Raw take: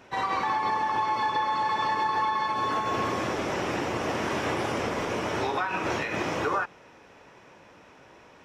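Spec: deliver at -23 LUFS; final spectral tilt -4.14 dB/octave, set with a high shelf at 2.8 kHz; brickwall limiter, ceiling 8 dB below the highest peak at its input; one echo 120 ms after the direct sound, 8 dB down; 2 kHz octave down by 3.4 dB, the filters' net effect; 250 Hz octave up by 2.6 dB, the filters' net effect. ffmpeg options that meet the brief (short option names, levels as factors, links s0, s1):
-af "equalizer=f=250:t=o:g=3.5,equalizer=f=2000:t=o:g=-7,highshelf=f=2800:g=6.5,alimiter=level_in=1.06:limit=0.0631:level=0:latency=1,volume=0.944,aecho=1:1:120:0.398,volume=2.82"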